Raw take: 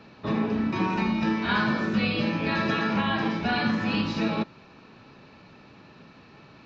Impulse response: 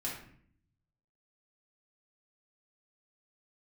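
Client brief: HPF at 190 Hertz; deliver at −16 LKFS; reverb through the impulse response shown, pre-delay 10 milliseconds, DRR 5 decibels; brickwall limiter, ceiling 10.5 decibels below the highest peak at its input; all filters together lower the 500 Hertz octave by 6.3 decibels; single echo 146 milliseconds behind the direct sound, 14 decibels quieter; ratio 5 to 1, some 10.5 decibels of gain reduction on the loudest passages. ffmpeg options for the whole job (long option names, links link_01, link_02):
-filter_complex "[0:a]highpass=190,equalizer=frequency=500:width_type=o:gain=-8.5,acompressor=threshold=-36dB:ratio=5,alimiter=level_in=12dB:limit=-24dB:level=0:latency=1,volume=-12dB,aecho=1:1:146:0.2,asplit=2[link_01][link_02];[1:a]atrim=start_sample=2205,adelay=10[link_03];[link_02][link_03]afir=irnorm=-1:irlink=0,volume=-7dB[link_04];[link_01][link_04]amix=inputs=2:normalize=0,volume=27.5dB"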